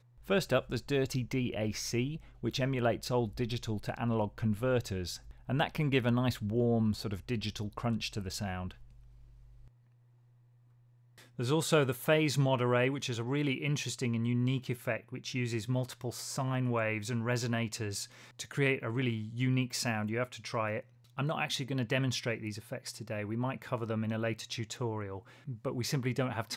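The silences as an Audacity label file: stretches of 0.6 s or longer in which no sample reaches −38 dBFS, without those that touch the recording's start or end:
8.710000	11.390000	silence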